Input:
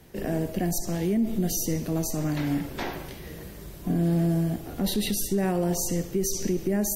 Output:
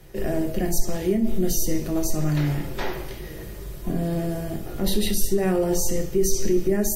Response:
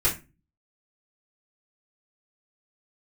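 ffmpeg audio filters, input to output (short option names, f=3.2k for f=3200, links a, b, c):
-filter_complex "[0:a]asplit=2[a][b];[1:a]atrim=start_sample=2205,atrim=end_sample=3528[c];[b][c]afir=irnorm=-1:irlink=0,volume=-14dB[d];[a][d]amix=inputs=2:normalize=0"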